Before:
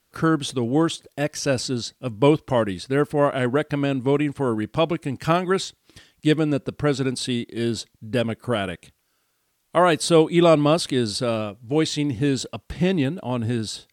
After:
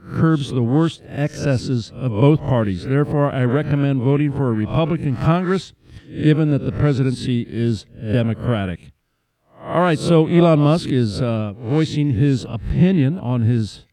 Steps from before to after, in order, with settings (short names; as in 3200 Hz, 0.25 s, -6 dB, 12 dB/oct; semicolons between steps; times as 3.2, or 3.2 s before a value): spectral swells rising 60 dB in 0.39 s; tone controls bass +12 dB, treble -9 dB; 2.53–3.9 crackle 32/s -42 dBFS; gain -1.5 dB